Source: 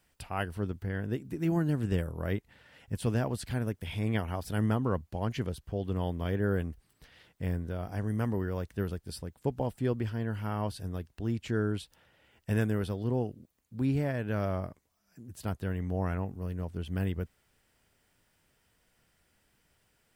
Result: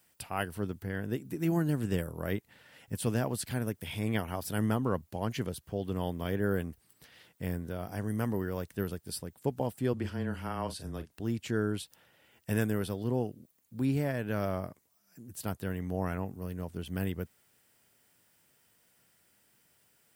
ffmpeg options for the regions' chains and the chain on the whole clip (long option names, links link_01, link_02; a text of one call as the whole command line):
ffmpeg -i in.wav -filter_complex "[0:a]asettb=1/sr,asplit=3[link_01][link_02][link_03];[link_01]atrim=end=9.934[link_04];[link_02]atrim=start=9.93:end=11.11,asetpts=PTS-STARTPTS,afade=type=in:duration=0.004:curve=qsin,afade=type=out:start_time=1.176:duration=0.004:curve=qsin,lowpass=10000,afreqshift=-14,asplit=2[link_05][link_06];[link_06]adelay=38,volume=-11dB[link_07];[link_05][link_07]amix=inputs=2:normalize=0,atrim=end_sample=52038[link_08];[link_03]atrim=start=11.106[link_09];[link_04][link_08]acrossfade=duration=0.004:curve1=hsin:curve2=qsin[link_10];[link_10][link_09]acrossfade=duration=0.004:curve1=qsin:curve2=hsin,highpass=110,highshelf=frequency=8000:gain=11.5" out.wav